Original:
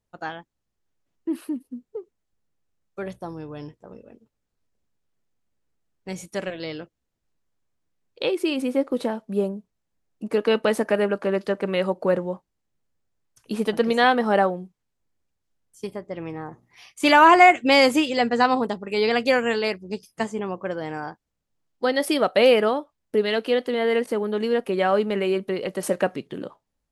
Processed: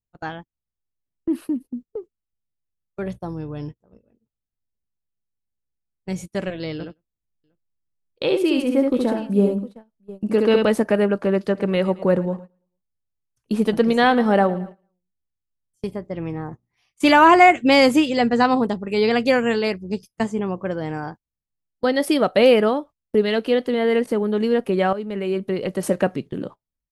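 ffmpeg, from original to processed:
ffmpeg -i in.wav -filter_complex "[0:a]asettb=1/sr,asplit=3[link_01][link_02][link_03];[link_01]atrim=end=6.734[link_04];[link_02]atrim=start=6.73:end=10.67,asetpts=PTS-STARTPTS,afade=type=in:duration=0.004:curve=qsin,afade=type=out:start_time=3.936:duration=0.004:curve=qsin,aecho=1:1:70|167|707:0.668|0.106|0.141,atrim=end_sample=173754[link_05];[link_03]atrim=start=10.666[link_06];[link_04][link_05]acrossfade=duration=0.004:curve1=hsin:curve2=qsin[link_07];[link_07][link_06]acrossfade=duration=0.004:curve1=qsin:curve2=hsin,asplit=3[link_08][link_09][link_10];[link_08]afade=type=out:start_time=11.54:duration=0.02[link_11];[link_09]aecho=1:1:111|222|333|444:0.126|0.0579|0.0266|0.0123,afade=type=in:start_time=11.54:duration=0.02,afade=type=out:start_time=15.9:duration=0.02[link_12];[link_10]afade=type=in:start_time=15.9:duration=0.02[link_13];[link_11][link_12][link_13]amix=inputs=3:normalize=0,asplit=2[link_14][link_15];[link_14]atrim=end=24.93,asetpts=PTS-STARTPTS,afade=type=out:start_time=24.926:duration=0.004:curve=hsin:silence=0.211349[link_16];[link_15]atrim=start=24.93,asetpts=PTS-STARTPTS,afade=type=in:duration=0.71:silence=0.211349[link_17];[link_16][link_17]concat=n=2:v=0:a=1,agate=range=-19dB:threshold=-39dB:ratio=16:detection=peak,lowshelf=frequency=230:gain=12" out.wav

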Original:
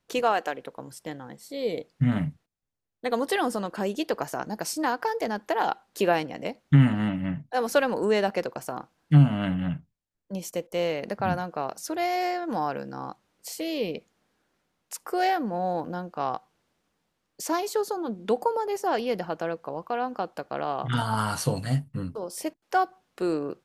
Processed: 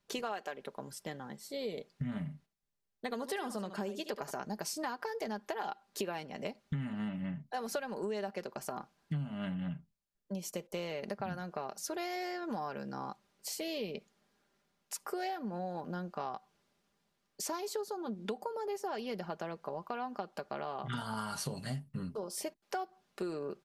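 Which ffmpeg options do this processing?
ffmpeg -i in.wav -filter_complex "[0:a]asettb=1/sr,asplit=3[link_01][link_02][link_03];[link_01]atrim=end=2.184[link_04];[link_02]atrim=start=2.18:end=4.31,asetpts=PTS-STARTPTS,afade=type=in:duration=0.004:curve=qsin,afade=type=out:start_time=2.126:duration=0.004:curve=qsin,aecho=1:1:73:0.237,atrim=end_sample=93933[link_05];[link_03]atrim=start=4.306[link_06];[link_04][link_05]acrossfade=duration=0.004:curve1=hsin:curve2=qsin[link_07];[link_07][link_06]acrossfade=duration=0.004:curve1=qsin:curve2=hsin,equalizer=frequency=4800:width=1.5:gain=2.5,aecho=1:1:5:0.5,acompressor=threshold=-31dB:ratio=6,volume=-4dB" out.wav

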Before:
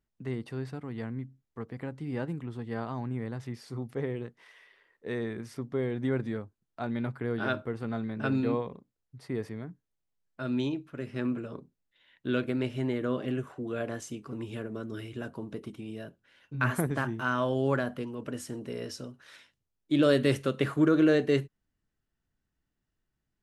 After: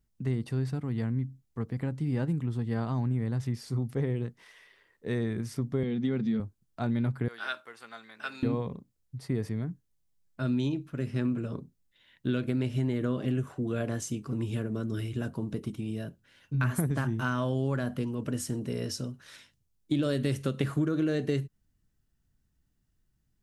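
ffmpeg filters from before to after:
ffmpeg -i in.wav -filter_complex "[0:a]asettb=1/sr,asplit=3[link_01][link_02][link_03];[link_01]atrim=end=5.834[link_04];[link_02]atrim=start=5.83:end=6.4,asetpts=PTS-STARTPTS,afade=type=in:duration=0.004:curve=qsin,afade=type=out:start_time=0.566:duration=0.004:curve=qsin,highpass=210,equalizer=frequency=210:width_type=q:width=4:gain=10,equalizer=frequency=320:width_type=q:width=4:gain=-7,equalizer=frequency=600:width_type=q:width=4:gain=-8,equalizer=frequency=970:width_type=q:width=4:gain=-7,equalizer=frequency=1600:width_type=q:width=4:gain=-6,equalizer=frequency=3300:width_type=q:width=4:gain=4,lowpass=frequency=6000:width=0.5412,lowpass=frequency=6000:width=1.3066[link_05];[link_03]atrim=start=6.396[link_06];[link_04][link_05]acrossfade=duration=0.004:curve1=hsin:curve2=qsin[link_07];[link_07][link_06]acrossfade=duration=0.004:curve1=qsin:curve2=hsin,asettb=1/sr,asplit=3[link_08][link_09][link_10];[link_08]atrim=end=7.284[link_11];[link_09]atrim=start=7.28:end=8.43,asetpts=PTS-STARTPTS,afade=type=in:duration=0.004:curve=qsin,afade=type=out:start_time=1.146:duration=0.004:curve=qsin,highpass=1200[link_12];[link_10]atrim=start=8.426[link_13];[link_11][link_12]acrossfade=duration=0.004:curve1=hsin:curve2=qsin[link_14];[link_14][link_13]acrossfade=duration=0.004:curve1=qsin:curve2=hsin,bass=frequency=250:gain=10,treble=frequency=4000:gain=7,acompressor=threshold=-24dB:ratio=10" out.wav

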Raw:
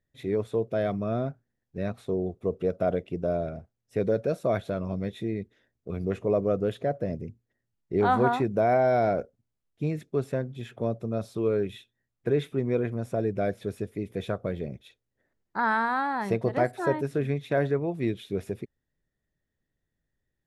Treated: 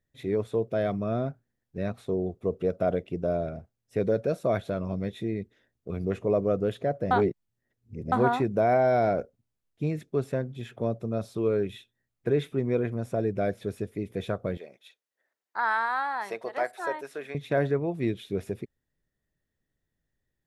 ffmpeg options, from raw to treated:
ffmpeg -i in.wav -filter_complex "[0:a]asettb=1/sr,asplit=3[link_01][link_02][link_03];[link_01]atrim=end=14.574[link_04];[link_02]atrim=start=14.57:end=17.35,asetpts=PTS-STARTPTS,afade=type=in:duration=0.004:curve=qsin,afade=type=out:start_time=2.776:duration=0.004:curve=qsin,highpass=680[link_05];[link_03]atrim=start=17.346[link_06];[link_04][link_05]acrossfade=duration=0.004:curve1=hsin:curve2=qsin[link_07];[link_07][link_06]acrossfade=duration=0.004:curve1=qsin:curve2=hsin,asplit=3[link_08][link_09][link_10];[link_08]atrim=end=7.112[link_11];[link_09]atrim=start=7.108:end=8.122,asetpts=PTS-STARTPTS,areverse[link_12];[link_10]atrim=start=8.118[link_13];[link_11][link_12]acrossfade=duration=0.004:curve1=hsin:curve2=hsin[link_14];[link_14][link_13]acrossfade=duration=0.004:curve1=hsin:curve2=hsin" out.wav

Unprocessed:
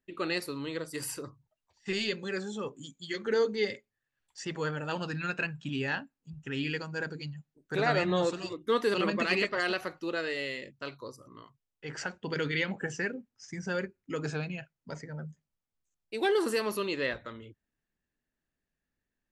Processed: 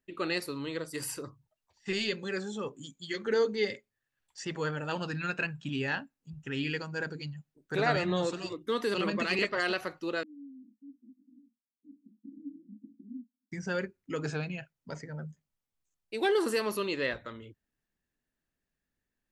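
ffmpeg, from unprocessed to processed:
ffmpeg -i in.wav -filter_complex "[0:a]asettb=1/sr,asplit=3[link_01][link_02][link_03];[link_01]atrim=end=7.964[link_04];[link_02]atrim=start=7.96:end=9.39,asetpts=PTS-STARTPTS,afade=type=in:duration=0.004:curve=qsin,afade=type=out:start_time=1.426:duration=0.004:curve=qsin,acrossover=split=250|3000[link_05][link_06][link_07];[link_06]acompressor=threshold=-30dB:ratio=2:attack=3.2:release=140:knee=2.83:detection=peak[link_08];[link_05][link_08][link_07]amix=inputs=3:normalize=0[link_09];[link_03]atrim=start=9.386[link_10];[link_04][link_09]acrossfade=duration=0.004:curve1=hsin:curve2=qsin[link_11];[link_11][link_10]acrossfade=duration=0.004:curve1=qsin:curve2=hsin,asettb=1/sr,asplit=3[link_12][link_13][link_14];[link_12]atrim=end=10.234[link_15];[link_13]atrim=start=10.23:end=13.52,asetpts=PTS-STARTPTS,afade=type=in:duration=0.004:curve=qsin,afade=type=out:start_time=3.286:duration=0.004:curve=qsin,asuperpass=centerf=250:order=8:qfactor=3.1[link_16];[link_14]atrim=start=13.516[link_17];[link_15][link_16]acrossfade=duration=0.004:curve1=hsin:curve2=qsin[link_18];[link_18][link_17]acrossfade=duration=0.004:curve1=qsin:curve2=hsin" out.wav

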